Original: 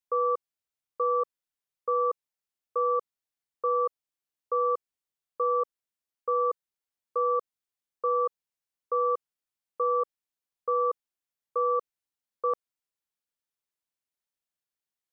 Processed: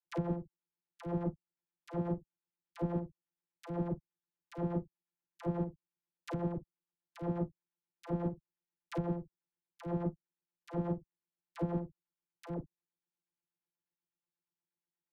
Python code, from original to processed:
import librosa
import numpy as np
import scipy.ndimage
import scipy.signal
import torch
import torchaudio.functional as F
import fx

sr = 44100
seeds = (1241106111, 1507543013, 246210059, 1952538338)

y = np.r_[np.sort(x[:len(x) // 256 * 256].reshape(-1, 256), axis=1).ravel(), x[len(x) // 256 * 256:]]
y = fx.env_lowpass_down(y, sr, base_hz=650.0, full_db=-27.5)
y = fx.chopper(y, sr, hz=8.3, depth_pct=60, duty_pct=20)
y = fx.dispersion(y, sr, late='lows', ms=69.0, hz=550.0)
y = 10.0 ** (-24.0 / 20.0) * np.tanh(y / 10.0 ** (-24.0 / 20.0))
y = fx.room_early_taps(y, sr, ms=(37, 51), db=(-14.5, -16.0))
y = fx.upward_expand(y, sr, threshold_db=-42.0, expansion=1.5)